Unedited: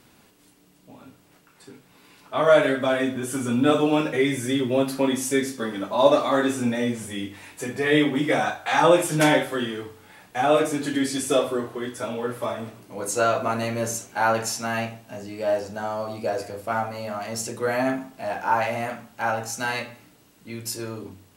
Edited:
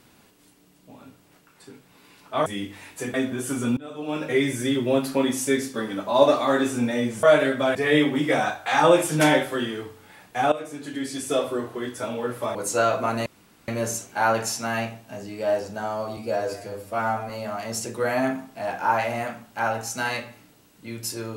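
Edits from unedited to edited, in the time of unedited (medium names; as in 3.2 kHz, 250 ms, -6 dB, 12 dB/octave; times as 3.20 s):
2.46–2.98 s: swap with 7.07–7.75 s
3.61–4.18 s: fade in quadratic, from -22.5 dB
10.52–11.77 s: fade in, from -16 dB
12.55–12.97 s: delete
13.68 s: insert room tone 0.42 s
16.17–16.92 s: stretch 1.5×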